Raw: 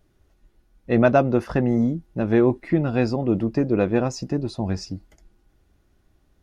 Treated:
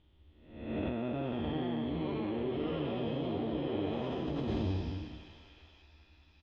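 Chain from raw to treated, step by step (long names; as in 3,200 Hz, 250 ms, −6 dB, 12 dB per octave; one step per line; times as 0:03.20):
spectrum smeared in time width 469 ms
hollow resonant body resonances 300/920 Hz, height 7 dB, ringing for 35 ms
on a send: feedback echo with a high-pass in the loop 542 ms, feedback 70%, high-pass 1,100 Hz, level −12 dB
on the sum: delay with pitch and tempo change per echo 717 ms, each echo +4 semitones, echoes 3
transistor ladder low-pass 3,500 Hz, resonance 75%
notch filter 1,500 Hz, Q 11
double-tracking delay 13 ms −7 dB
in parallel at +1 dB: compressor whose output falls as the input rises −39 dBFS, ratio −0.5
on the sum: parametric band 74 Hz +13 dB 0.65 octaves
level −6 dB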